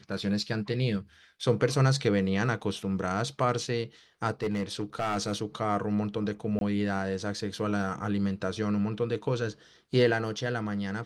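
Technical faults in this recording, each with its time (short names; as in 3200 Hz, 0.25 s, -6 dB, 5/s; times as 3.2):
4.42–5.33 clipped -24 dBFS
6.59–6.61 gap 22 ms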